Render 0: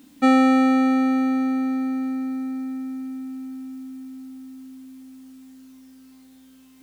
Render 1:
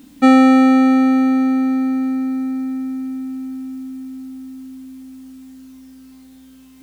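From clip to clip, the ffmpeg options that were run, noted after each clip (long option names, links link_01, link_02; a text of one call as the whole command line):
ffmpeg -i in.wav -af "lowshelf=frequency=130:gain=10,volume=4.5dB" out.wav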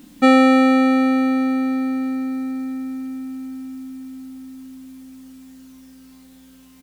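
ffmpeg -i in.wav -af "aecho=1:1:5.6:0.37" out.wav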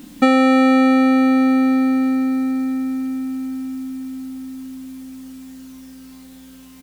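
ffmpeg -i in.wav -af "acompressor=threshold=-16dB:ratio=6,volume=5.5dB" out.wav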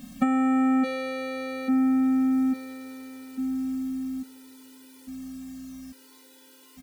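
ffmpeg -i in.wav -af "acompressor=threshold=-17dB:ratio=4,afftfilt=real='re*gt(sin(2*PI*0.59*pts/sr)*(1-2*mod(floor(b*sr/1024/260),2)),0)':imag='im*gt(sin(2*PI*0.59*pts/sr)*(1-2*mod(floor(b*sr/1024/260),2)),0)':win_size=1024:overlap=0.75,volume=-1dB" out.wav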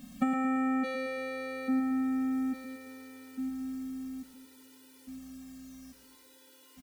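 ffmpeg -i in.wav -af "aecho=1:1:113|226|339|452|565:0.376|0.177|0.083|0.039|0.0183,volume=-5.5dB" out.wav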